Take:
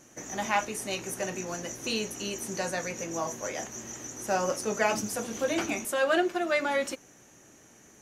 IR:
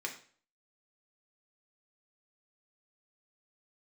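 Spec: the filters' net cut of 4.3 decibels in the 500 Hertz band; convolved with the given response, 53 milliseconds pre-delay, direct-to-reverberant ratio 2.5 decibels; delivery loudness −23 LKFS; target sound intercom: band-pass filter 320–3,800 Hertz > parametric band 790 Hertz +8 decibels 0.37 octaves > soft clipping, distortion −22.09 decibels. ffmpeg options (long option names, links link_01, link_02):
-filter_complex "[0:a]equalizer=frequency=500:width_type=o:gain=-6.5,asplit=2[link_01][link_02];[1:a]atrim=start_sample=2205,adelay=53[link_03];[link_02][link_03]afir=irnorm=-1:irlink=0,volume=-4.5dB[link_04];[link_01][link_04]amix=inputs=2:normalize=0,highpass=320,lowpass=3800,equalizer=frequency=790:width_type=o:width=0.37:gain=8,asoftclip=threshold=-14.5dB,volume=8dB"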